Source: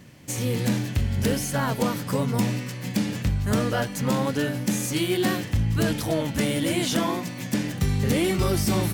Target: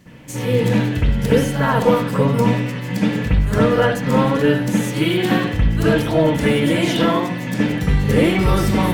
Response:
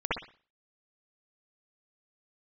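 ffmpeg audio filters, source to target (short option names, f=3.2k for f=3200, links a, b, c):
-filter_complex "[0:a]acontrast=34[a];[1:a]atrim=start_sample=2205[b];[a][b]afir=irnorm=-1:irlink=0,volume=-6.5dB"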